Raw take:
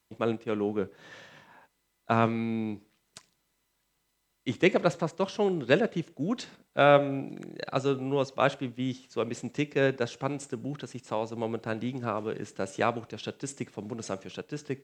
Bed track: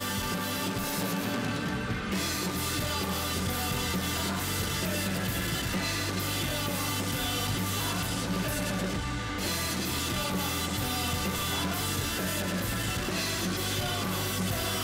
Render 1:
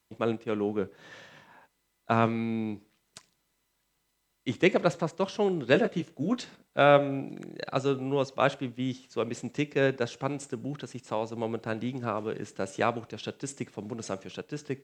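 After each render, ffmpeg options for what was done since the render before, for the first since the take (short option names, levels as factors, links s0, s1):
-filter_complex "[0:a]asettb=1/sr,asplit=3[s0][s1][s2];[s0]atrim=end=5.734[s3];[s1]atrim=start=5.73:end=6.42,asetpts=PTS-STARTPTS,afade=t=in:d=0.004:c=qsin,afade=t=out:st=0.686:d=0.004:c=qsin,asplit=2[s4][s5];[s5]adelay=16,volume=0.501[s6];[s4][s6]amix=inputs=2:normalize=0,atrim=end_sample=30429[s7];[s2]atrim=start=6.416[s8];[s3][s7]acrossfade=d=0.004:c1=hsin:c2=qsin[s9];[s9][s8]acrossfade=d=0.004:c1=qsin:c2=hsin"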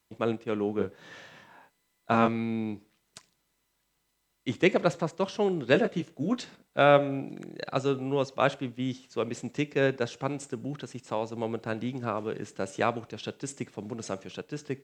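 -filter_complex "[0:a]asettb=1/sr,asplit=3[s0][s1][s2];[s0]atrim=end=0.754[s3];[s1]atrim=start=0.75:end=2.28,asetpts=PTS-STARTPTS,afade=t=in:d=0.004:c=qsin,afade=t=out:st=1.526:d=0.004:c=qsin,asplit=2[s4][s5];[s5]adelay=30,volume=0.596[s6];[s4][s6]amix=inputs=2:normalize=0,atrim=end_sample=67473[s7];[s2]atrim=start=2.276[s8];[s3][s7]acrossfade=d=0.004:c1=hsin:c2=qsin[s9];[s9][s8]acrossfade=d=0.004:c1=qsin:c2=hsin"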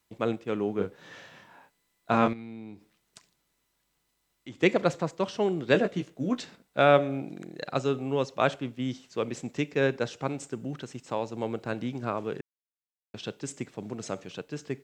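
-filter_complex "[0:a]asettb=1/sr,asplit=3[s0][s1][s2];[s0]atrim=end=2.334[s3];[s1]atrim=start=2.33:end=4.62,asetpts=PTS-STARTPTS,afade=t=in:d=0.004:c=qsin,afade=t=out:st=2.286:d=0.004:c=qsin,acompressor=threshold=0.00447:ratio=2:attack=3.2:release=140:knee=1:detection=peak[s4];[s2]atrim=start=4.616[s5];[s3][s4]acrossfade=d=0.004:c1=hsin:c2=qsin[s6];[s6][s5]acrossfade=d=0.004:c1=qsin:c2=hsin,asplit=3[s7][s8][s9];[s7]atrim=end=12.41,asetpts=PTS-STARTPTS,afade=t=out:st=12.406:d=0.004:c=hsin[s10];[s8]atrim=start=12.41:end=13.14,asetpts=PTS-STARTPTS,volume=0[s11];[s9]atrim=start=13.14,asetpts=PTS-STARTPTS,afade=t=in:d=0.004:c=hsin[s12];[s10][s11][s12]concat=n=3:v=0:a=1"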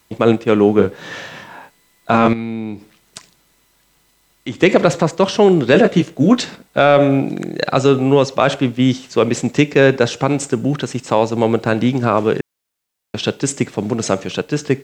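-af "acontrast=37,alimiter=level_in=3.98:limit=0.891:release=50:level=0:latency=1"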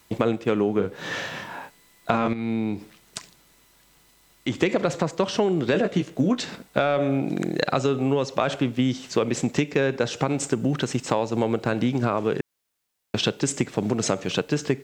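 -af "acompressor=threshold=0.112:ratio=6"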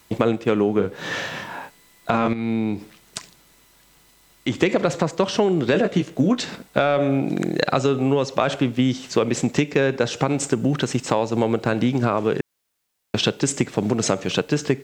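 -af "volume=1.41,alimiter=limit=0.708:level=0:latency=1"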